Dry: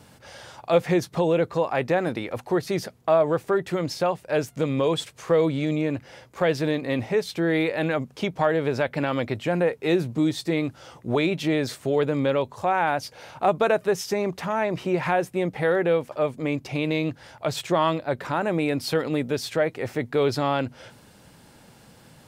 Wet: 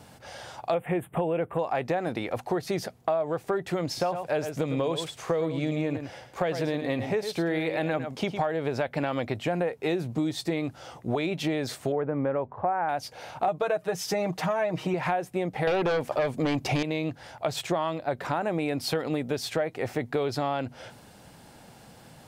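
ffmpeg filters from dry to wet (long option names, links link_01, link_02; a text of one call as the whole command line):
ffmpeg -i in.wav -filter_complex "[0:a]asettb=1/sr,asplit=3[link_01][link_02][link_03];[link_01]atrim=end=0.744[link_04];[link_02]atrim=start=0.74:end=1.59,asetpts=PTS-STARTPTS,afade=type=in:duration=0.004:curve=qsin,afade=type=out:start_time=0.846:duration=0.004:curve=qsin,asuperstop=centerf=5200:order=8:qfactor=0.98[link_05];[link_03]atrim=start=1.586[link_06];[link_04][link_05]acrossfade=duration=0.004:curve1=hsin:curve2=qsin[link_07];[link_07][link_06]acrossfade=duration=0.004:curve1=qsin:curve2=hsin,asettb=1/sr,asplit=3[link_08][link_09][link_10];[link_08]atrim=end=3.874[link_11];[link_09]atrim=start=3.87:end=8.4,asetpts=PTS-STARTPTS,afade=type=in:duration=0.004:curve=qsin,afade=type=out:start_time=4.526:duration=0.004:curve=qsin,aecho=1:1:106:0.316,atrim=end_sample=199773[link_12];[link_10]atrim=start=8.396[link_13];[link_11][link_12]acrossfade=duration=0.004:curve1=hsin:curve2=qsin[link_14];[link_14][link_13]acrossfade=duration=0.004:curve1=qsin:curve2=hsin,asettb=1/sr,asplit=3[link_15][link_16][link_17];[link_15]atrim=end=11.924[link_18];[link_16]atrim=start=11.92:end=12.89,asetpts=PTS-STARTPTS,afade=type=in:duration=0.004:curve=qsin,afade=type=out:start_time=0.966:duration=0.004:curve=qsin,lowpass=frequency=1800:width=0.5412,lowpass=frequency=1800:width=1.3066[link_19];[link_17]atrim=start=12.886[link_20];[link_18][link_19]acrossfade=duration=0.004:curve1=hsin:curve2=qsin[link_21];[link_21][link_20]acrossfade=duration=0.004:curve1=qsin:curve2=hsin,asettb=1/sr,asplit=3[link_22][link_23][link_24];[link_22]atrim=end=13.474[link_25];[link_23]atrim=start=13.47:end=14.94,asetpts=PTS-STARTPTS,afade=type=in:duration=0.004:curve=qsin,afade=type=out:start_time=1.466:duration=0.004:curve=qsin,aecho=1:1:6.4:0.8,atrim=end_sample=64827[link_26];[link_24]atrim=start=14.936[link_27];[link_25][link_26]acrossfade=duration=0.004:curve1=hsin:curve2=qsin[link_28];[link_28][link_27]acrossfade=duration=0.004:curve1=qsin:curve2=hsin,asettb=1/sr,asplit=3[link_29][link_30][link_31];[link_29]atrim=end=15.674[link_32];[link_30]atrim=start=15.67:end=16.83,asetpts=PTS-STARTPTS,afade=type=in:duration=0.004:curve=qsin,afade=type=out:start_time=1.156:duration=0.004:curve=qsin,aeval=exprs='0.237*sin(PI/2*2.24*val(0)/0.237)':channel_layout=same[link_33];[link_31]atrim=start=16.826[link_34];[link_32][link_33]acrossfade=duration=0.004:curve1=hsin:curve2=qsin[link_35];[link_35][link_34]acrossfade=duration=0.004:curve1=qsin:curve2=hsin,equalizer=frequency=730:width=3.5:gain=6,acompressor=threshold=-24dB:ratio=6" out.wav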